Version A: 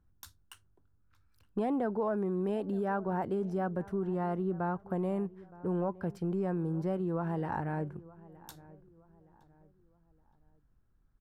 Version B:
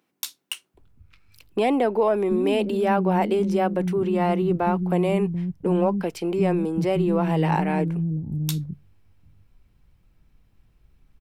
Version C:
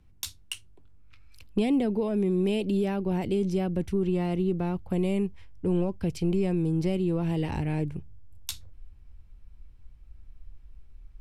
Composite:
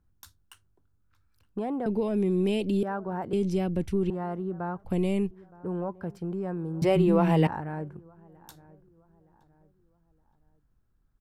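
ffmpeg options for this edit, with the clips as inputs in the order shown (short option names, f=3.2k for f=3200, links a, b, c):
-filter_complex "[2:a]asplit=3[a][b][c];[0:a]asplit=5[d][e][f][g][h];[d]atrim=end=1.862[i];[a]atrim=start=1.858:end=2.832[j];[e]atrim=start=2.828:end=3.332[k];[b]atrim=start=3.328:end=4.102[l];[f]atrim=start=4.098:end=4.852[m];[c]atrim=start=4.848:end=5.312[n];[g]atrim=start=5.308:end=6.822[o];[1:a]atrim=start=6.818:end=7.472[p];[h]atrim=start=7.468[q];[i][j]acrossfade=d=0.004:c1=hsin:c2=hsin[r];[r][k]acrossfade=d=0.004:c1=hsin:c2=hsin[s];[s][l]acrossfade=d=0.004:c1=hsin:c2=hsin[t];[t][m]acrossfade=d=0.004:c1=hsin:c2=hsin[u];[u][n]acrossfade=d=0.004:c1=hsin:c2=hsin[v];[v][o]acrossfade=d=0.004:c1=hsin:c2=hsin[w];[w][p]acrossfade=d=0.004:c1=hsin:c2=hsin[x];[x][q]acrossfade=d=0.004:c1=hsin:c2=hsin"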